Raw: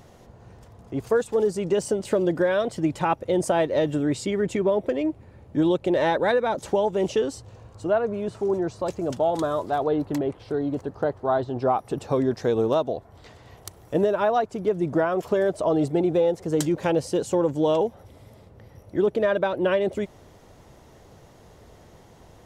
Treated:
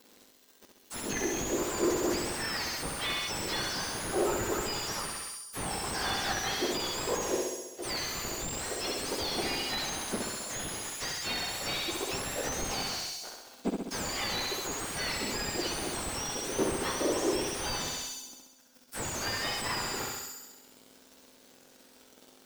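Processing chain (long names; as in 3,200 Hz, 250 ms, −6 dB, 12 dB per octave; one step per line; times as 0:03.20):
frequency axis turned over on the octave scale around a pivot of 1,700 Hz
0:02.41–0:03.96: high-pass filter 1,100 Hz 12 dB per octave
leveller curve on the samples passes 3
in parallel at −3 dB: soft clipping −24 dBFS, distortion −11 dB
on the sum: flutter between parallel walls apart 11.3 metres, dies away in 1.1 s
slew-rate limiting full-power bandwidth 240 Hz
level −9 dB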